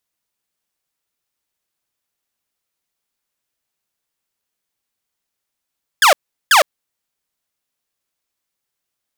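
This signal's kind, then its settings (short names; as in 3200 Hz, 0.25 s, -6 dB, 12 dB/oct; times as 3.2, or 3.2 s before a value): burst of laser zaps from 1800 Hz, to 530 Hz, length 0.11 s saw, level -4.5 dB, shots 2, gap 0.38 s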